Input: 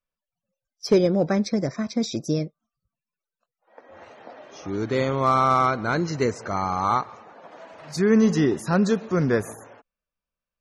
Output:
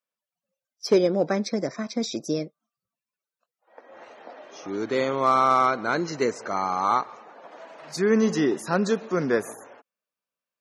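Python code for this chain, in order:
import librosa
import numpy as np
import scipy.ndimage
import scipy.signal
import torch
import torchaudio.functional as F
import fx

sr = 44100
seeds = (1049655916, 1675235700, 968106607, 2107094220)

y = scipy.signal.sosfilt(scipy.signal.butter(2, 250.0, 'highpass', fs=sr, output='sos'), x)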